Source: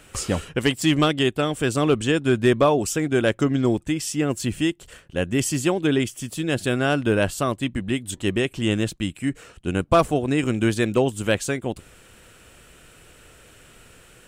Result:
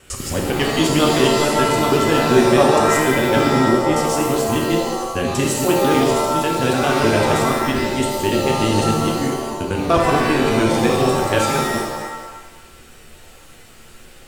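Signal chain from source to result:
reversed piece by piece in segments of 99 ms
reverb with rising layers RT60 1.1 s, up +7 semitones, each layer −2 dB, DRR 0.5 dB

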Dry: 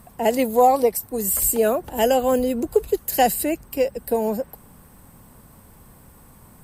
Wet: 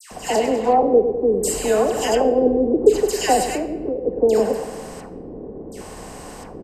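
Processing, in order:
compressor on every frequency bin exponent 0.6
0:00.38–0:01.07: high-frequency loss of the air 260 metres
repeating echo 101 ms, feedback 58%, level −9.5 dB
auto-filter low-pass square 0.7 Hz 400–6,100 Hz
all-pass dispersion lows, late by 115 ms, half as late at 1,700 Hz
0:03.54–0:04.05: downward compressor, threshold −19 dBFS, peak gain reduction 8 dB
convolution reverb RT60 1.1 s, pre-delay 7 ms, DRR 9.5 dB
level −2.5 dB

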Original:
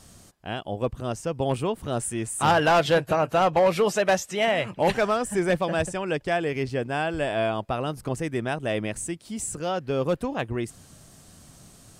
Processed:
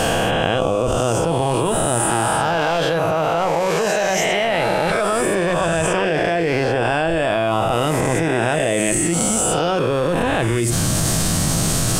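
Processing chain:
peak hold with a rise ahead of every peak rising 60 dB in 2.02 s
convolution reverb, pre-delay 6 ms, DRR 10.5 dB
envelope flattener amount 100%
level −5 dB

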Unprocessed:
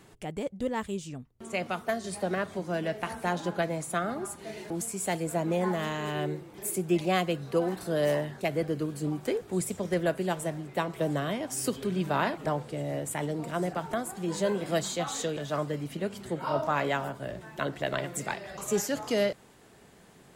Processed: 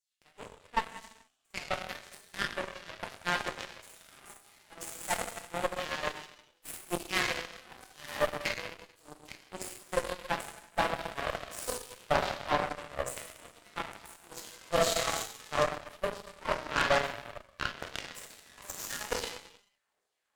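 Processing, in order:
auto-filter high-pass saw down 2.3 Hz 460–6,200 Hz
reverb whose tail is shaped and stops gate 490 ms falling, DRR −5.5 dB
harmonic generator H 3 −14 dB, 4 −13 dB, 5 −11 dB, 7 −12 dB, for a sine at −8.5 dBFS
level −5.5 dB

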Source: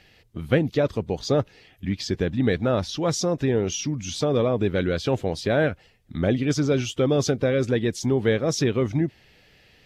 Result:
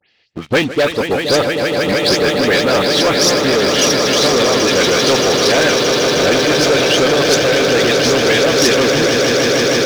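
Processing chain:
every frequency bin delayed by itself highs late, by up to 114 ms
low-pass filter 5,200 Hz 24 dB per octave
harmonic and percussive parts rebalanced percussive +7 dB
high-pass filter 360 Hz 6 dB per octave
echo that builds up and dies away 156 ms, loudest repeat 8, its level −9.5 dB
leveller curve on the samples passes 3
high-shelf EQ 2,300 Hz +8.5 dB
level −3.5 dB

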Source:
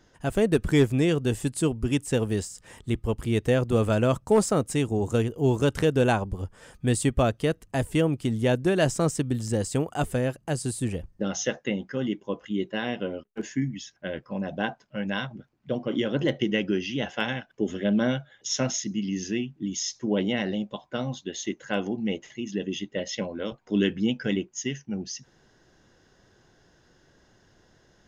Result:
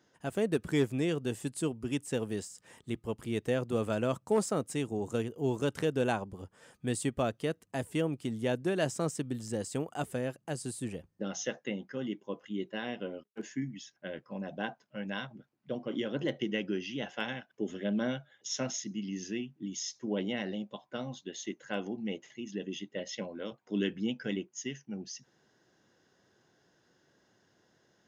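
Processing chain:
high-pass filter 140 Hz 12 dB per octave
level −7.5 dB

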